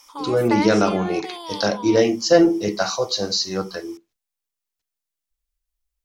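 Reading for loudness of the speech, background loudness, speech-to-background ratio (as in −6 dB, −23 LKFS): −20.0 LKFS, −31.5 LKFS, 11.5 dB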